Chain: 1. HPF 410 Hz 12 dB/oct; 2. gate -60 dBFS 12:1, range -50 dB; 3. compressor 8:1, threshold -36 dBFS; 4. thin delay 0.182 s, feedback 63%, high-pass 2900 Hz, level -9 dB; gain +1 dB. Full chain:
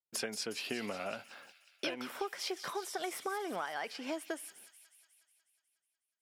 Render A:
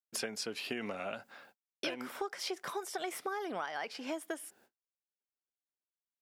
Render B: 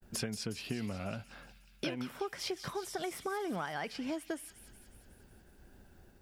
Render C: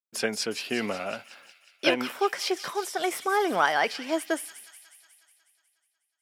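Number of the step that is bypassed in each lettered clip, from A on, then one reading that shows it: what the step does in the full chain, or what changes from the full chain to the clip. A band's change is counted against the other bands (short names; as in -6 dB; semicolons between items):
4, echo-to-direct -15.5 dB to none; 1, 125 Hz band +15.5 dB; 3, mean gain reduction 9.0 dB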